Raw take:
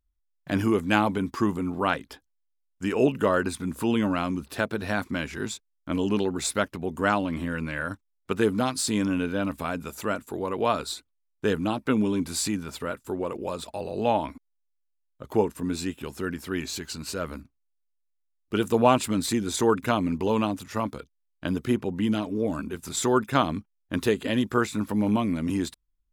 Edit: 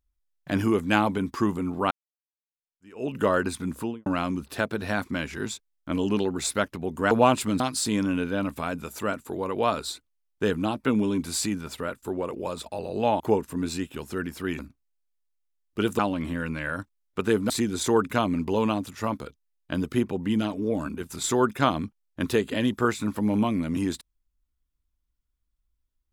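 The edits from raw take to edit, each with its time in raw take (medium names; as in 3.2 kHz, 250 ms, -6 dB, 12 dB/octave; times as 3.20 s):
1.91–3.17 s: fade in exponential
3.71–4.06 s: studio fade out
7.11–8.62 s: swap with 18.74–19.23 s
14.22–15.27 s: delete
16.66–17.34 s: delete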